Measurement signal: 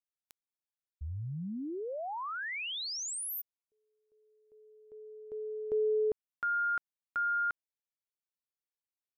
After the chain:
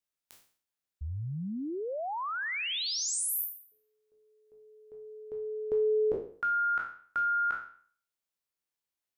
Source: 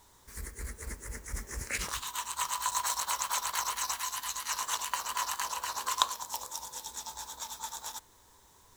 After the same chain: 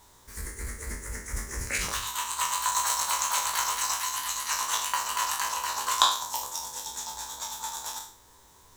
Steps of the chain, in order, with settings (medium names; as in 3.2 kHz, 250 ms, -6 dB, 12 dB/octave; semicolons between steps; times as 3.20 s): spectral sustain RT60 0.50 s; trim +2.5 dB